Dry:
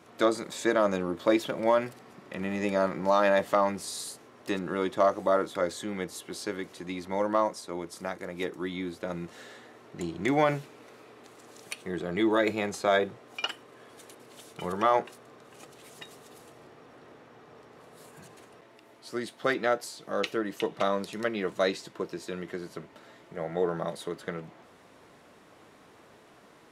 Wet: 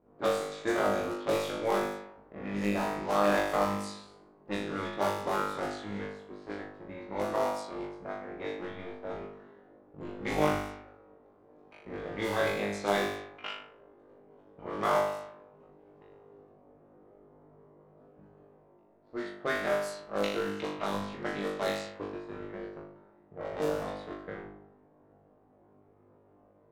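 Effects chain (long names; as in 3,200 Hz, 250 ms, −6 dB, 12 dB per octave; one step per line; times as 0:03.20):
sub-harmonics by changed cycles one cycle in 3, muted
flutter between parallel walls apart 3.4 metres, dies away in 0.8 s
low-pass that shuts in the quiet parts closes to 560 Hz, open at −21 dBFS
level −7 dB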